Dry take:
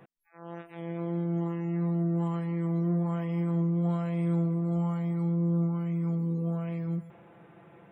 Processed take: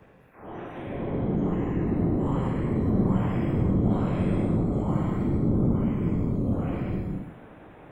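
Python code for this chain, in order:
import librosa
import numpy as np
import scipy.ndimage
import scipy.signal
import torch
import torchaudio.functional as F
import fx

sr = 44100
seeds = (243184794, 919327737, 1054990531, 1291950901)

y = fx.spec_trails(x, sr, decay_s=0.64)
y = fx.whisperise(y, sr, seeds[0])
y = fx.rev_gated(y, sr, seeds[1], gate_ms=260, shape='flat', drr_db=-2.5)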